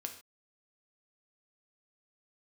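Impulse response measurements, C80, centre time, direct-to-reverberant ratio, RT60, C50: 13.0 dB, 13 ms, 4.0 dB, not exponential, 9.5 dB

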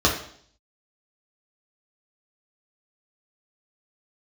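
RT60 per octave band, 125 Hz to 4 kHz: 0.65, 0.65, 0.60, 0.55, 0.55, 0.65 s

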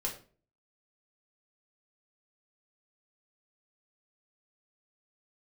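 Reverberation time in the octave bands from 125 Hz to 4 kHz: 0.55, 0.50, 0.45, 0.35, 0.35, 0.30 s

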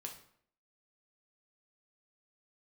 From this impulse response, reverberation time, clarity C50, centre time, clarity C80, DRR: 0.65 s, 8.0 dB, 18 ms, 12.5 dB, 1.5 dB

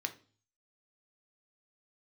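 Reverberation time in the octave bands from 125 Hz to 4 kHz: 0.75, 0.50, 0.45, 0.40, 0.35, 0.45 s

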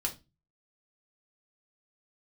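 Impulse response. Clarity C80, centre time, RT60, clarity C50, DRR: 22.5 dB, 11 ms, 0.25 s, 14.5 dB, 0.0 dB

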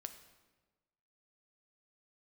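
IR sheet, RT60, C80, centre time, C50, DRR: 1.3 s, 12.0 dB, 13 ms, 10.5 dB, 8.0 dB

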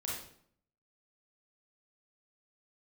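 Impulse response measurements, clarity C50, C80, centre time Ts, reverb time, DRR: 0.0 dB, 5.5 dB, 56 ms, 0.60 s, -5.0 dB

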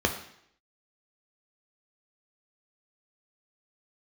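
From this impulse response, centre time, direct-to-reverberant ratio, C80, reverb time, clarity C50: 17 ms, 3.5 dB, 12.0 dB, 0.70 s, 9.0 dB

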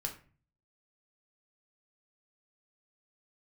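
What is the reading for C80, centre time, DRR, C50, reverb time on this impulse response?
15.5 dB, 14 ms, 1.5 dB, 11.0 dB, 0.40 s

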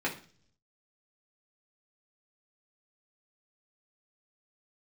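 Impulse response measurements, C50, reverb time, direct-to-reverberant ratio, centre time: 11.0 dB, 0.45 s, -4.0 dB, 16 ms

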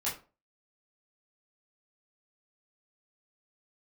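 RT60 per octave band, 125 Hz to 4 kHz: 0.35, 0.35, 0.35, 0.35, 0.25, 0.20 s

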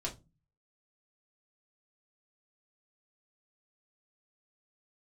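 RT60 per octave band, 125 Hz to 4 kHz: 0.65, 0.50, 0.30, 0.20, 0.15, 0.20 s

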